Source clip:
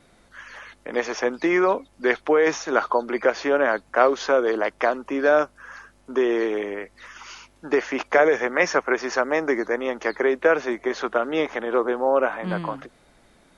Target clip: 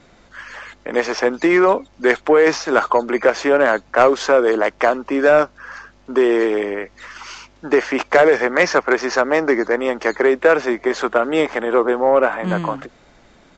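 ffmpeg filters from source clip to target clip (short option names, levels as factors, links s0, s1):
-af "acrusher=samples=4:mix=1:aa=0.000001,acontrast=70,aresample=16000,aresample=44100"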